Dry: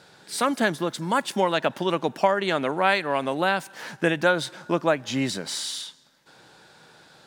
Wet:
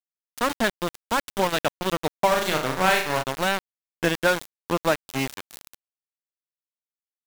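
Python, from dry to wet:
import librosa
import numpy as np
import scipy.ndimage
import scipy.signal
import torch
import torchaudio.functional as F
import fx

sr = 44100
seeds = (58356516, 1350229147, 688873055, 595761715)

y = np.where(np.abs(x) >= 10.0 ** (-21.5 / 20.0), x, 0.0)
y = fx.room_flutter(y, sr, wall_m=6.5, rt60_s=0.46, at=(2.3, 3.22), fade=0.02)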